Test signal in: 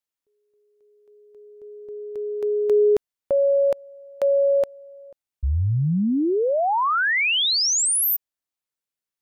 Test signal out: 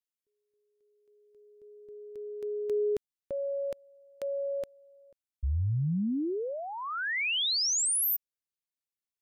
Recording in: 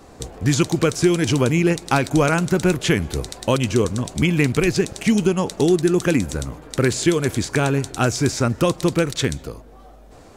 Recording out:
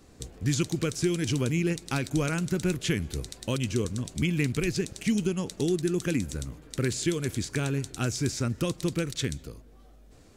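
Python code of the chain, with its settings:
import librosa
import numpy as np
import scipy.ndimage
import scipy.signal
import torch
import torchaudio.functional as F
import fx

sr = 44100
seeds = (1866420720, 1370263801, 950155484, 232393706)

y = fx.peak_eq(x, sr, hz=820.0, db=-10.5, octaves=1.7)
y = F.gain(torch.from_numpy(y), -7.0).numpy()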